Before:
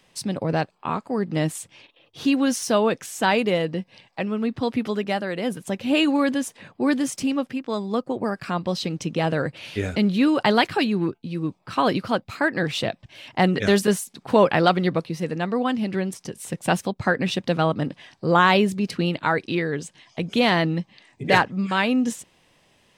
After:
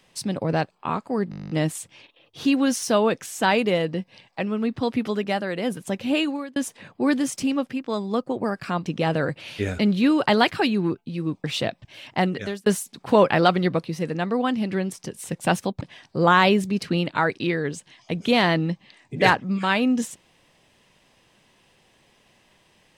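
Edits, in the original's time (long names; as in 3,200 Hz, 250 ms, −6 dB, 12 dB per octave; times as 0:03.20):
0:01.30: stutter 0.02 s, 11 plays
0:05.83–0:06.36: fade out
0:08.66–0:09.03: remove
0:11.61–0:12.65: remove
0:13.27–0:13.87: fade out
0:17.02–0:17.89: remove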